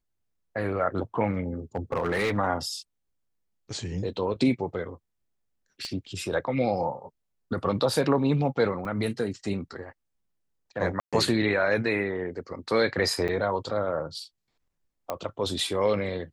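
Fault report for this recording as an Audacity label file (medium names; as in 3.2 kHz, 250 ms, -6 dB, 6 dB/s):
1.750000	2.380000	clipped -22 dBFS
5.850000	5.850000	pop -23 dBFS
8.850000	8.850000	dropout 2.3 ms
11.000000	11.130000	dropout 126 ms
13.280000	13.290000	dropout 5.5 ms
15.100000	15.100000	pop -16 dBFS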